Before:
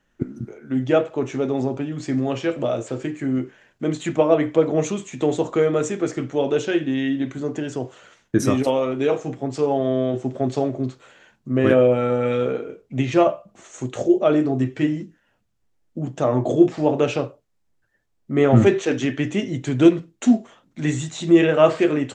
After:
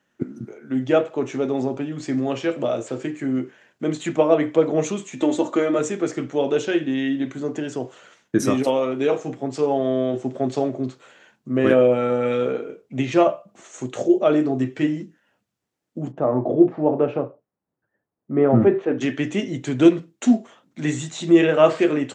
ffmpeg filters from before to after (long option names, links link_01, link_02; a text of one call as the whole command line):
ffmpeg -i in.wav -filter_complex "[0:a]asettb=1/sr,asplit=3[link_01][link_02][link_03];[link_01]atrim=end=5.174[link_04];[link_02]atrim=start=5.17:end=5.79,asetpts=PTS-STARTPTS,afade=type=in:duration=0.004:curve=qsin,afade=type=out:start_time=0.616:duration=0.004:curve=qsin,aecho=1:1:3.4:0.65,atrim=end_sample=27342[link_05];[link_03]atrim=start=5.786[link_06];[link_04][link_05]acrossfade=duration=0.004:curve1=hsin:curve2=qsin[link_07];[link_07][link_06]acrossfade=duration=0.004:curve1=qsin:curve2=hsin,asplit=3[link_08][link_09][link_10];[link_08]afade=type=out:start_time=16.11:duration=0.02[link_11];[link_09]lowpass=1200,afade=type=in:start_time=16.11:duration=0.02,afade=type=out:start_time=19:duration=0.02[link_12];[link_10]afade=type=in:start_time=19:duration=0.02[link_13];[link_11][link_12][link_13]amix=inputs=3:normalize=0,highpass=150" out.wav